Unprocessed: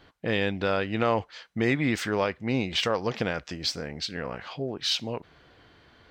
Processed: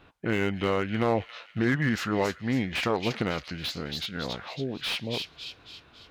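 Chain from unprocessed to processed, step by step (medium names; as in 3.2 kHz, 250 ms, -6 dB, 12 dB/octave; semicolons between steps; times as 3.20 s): feedback echo behind a high-pass 275 ms, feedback 48%, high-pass 3.9 kHz, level -4 dB; formant shift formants -3 st; slew-rate limiter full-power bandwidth 130 Hz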